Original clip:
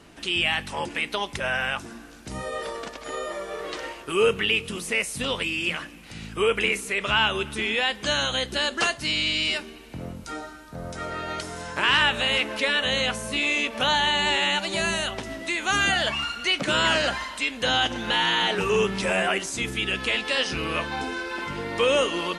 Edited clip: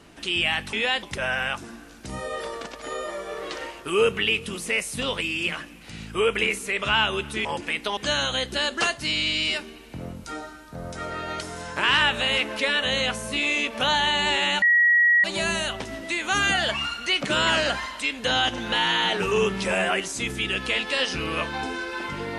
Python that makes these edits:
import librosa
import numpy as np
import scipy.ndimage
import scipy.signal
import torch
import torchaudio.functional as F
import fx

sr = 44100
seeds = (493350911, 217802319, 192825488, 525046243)

y = fx.edit(x, sr, fx.swap(start_s=0.73, length_s=0.52, other_s=7.67, other_length_s=0.3),
    fx.insert_tone(at_s=14.62, length_s=0.62, hz=1910.0, db=-14.5), tone=tone)